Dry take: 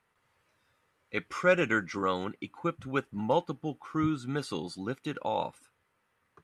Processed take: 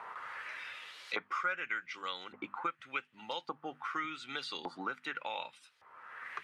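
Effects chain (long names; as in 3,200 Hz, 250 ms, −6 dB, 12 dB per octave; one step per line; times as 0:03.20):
mains-hum notches 50/100/150/200/250 Hz
auto-filter band-pass saw up 0.86 Hz 930–4,900 Hz
multiband upward and downward compressor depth 100%
level +4.5 dB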